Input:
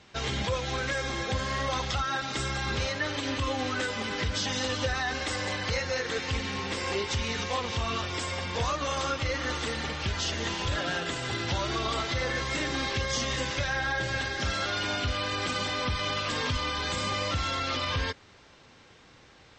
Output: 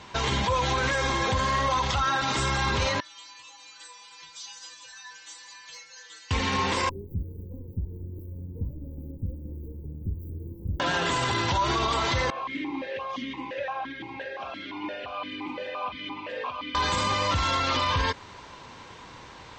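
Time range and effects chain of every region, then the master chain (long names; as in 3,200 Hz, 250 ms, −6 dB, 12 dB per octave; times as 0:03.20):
0:03.00–0:06.31: first-order pre-emphasis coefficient 0.97 + stiff-string resonator 160 Hz, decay 0.4 s, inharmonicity 0.002
0:06.89–0:10.80: lower of the sound and its delayed copy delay 2.2 ms + inverse Chebyshev band-stop filter 1,200–5,600 Hz, stop band 80 dB + mid-hump overdrive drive 9 dB, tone 3,100 Hz, clips at −22.5 dBFS
0:12.30–0:16.75: high-frequency loss of the air 110 metres + formant filter that steps through the vowels 5.8 Hz
whole clip: parametric band 980 Hz +13.5 dB 0.23 octaves; notch filter 5,200 Hz, Q 21; brickwall limiter −25 dBFS; level +8 dB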